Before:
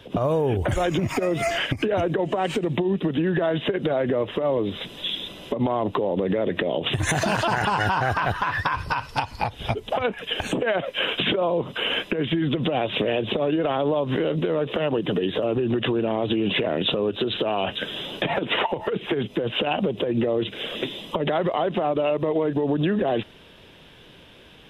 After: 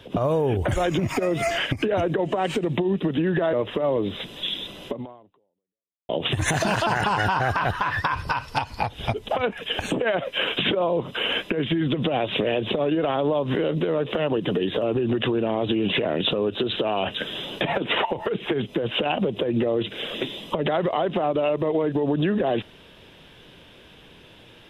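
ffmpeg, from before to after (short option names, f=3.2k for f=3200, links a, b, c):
-filter_complex "[0:a]asplit=3[a][b][c];[a]atrim=end=3.532[d];[b]atrim=start=4.138:end=6.7,asetpts=PTS-STARTPTS,afade=t=out:st=1.352:d=1.21:c=exp[e];[c]atrim=start=6.7,asetpts=PTS-STARTPTS,afade=t=in:d=0.004:c=hsin[f];[e][f]concat=n=2:v=0:a=1[g];[d][g]acrossfade=d=0.004:c1=hsin:c2=hsin"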